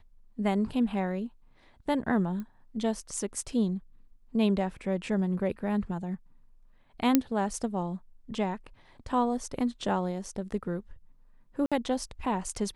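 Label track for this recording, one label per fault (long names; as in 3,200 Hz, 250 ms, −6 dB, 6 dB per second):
2.400000	2.400000	click −27 dBFS
7.150000	7.150000	click −7 dBFS
11.660000	11.720000	drop-out 56 ms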